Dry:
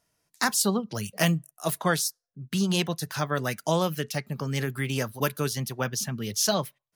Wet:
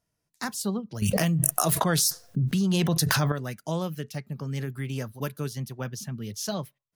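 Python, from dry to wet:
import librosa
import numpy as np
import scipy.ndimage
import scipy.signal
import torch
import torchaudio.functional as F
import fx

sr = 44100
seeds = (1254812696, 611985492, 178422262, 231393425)

y = fx.low_shelf(x, sr, hz=340.0, db=9.0)
y = fx.env_flatten(y, sr, amount_pct=100, at=(1.02, 3.32))
y = F.gain(torch.from_numpy(y), -9.0).numpy()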